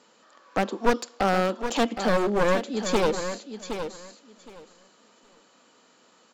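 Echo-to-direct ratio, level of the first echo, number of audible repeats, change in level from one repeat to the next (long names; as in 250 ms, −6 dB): −9.0 dB, −9.0 dB, 2, −15.0 dB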